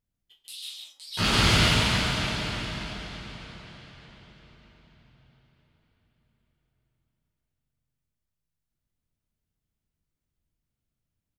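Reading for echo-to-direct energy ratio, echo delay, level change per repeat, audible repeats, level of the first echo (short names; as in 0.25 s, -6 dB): -3.5 dB, 0.145 s, no steady repeat, 1, -3.5 dB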